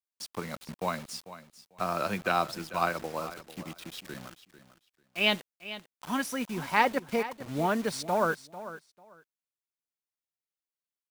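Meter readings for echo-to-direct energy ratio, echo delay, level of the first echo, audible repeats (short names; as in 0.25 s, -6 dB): -14.5 dB, 0.445 s, -14.5 dB, 2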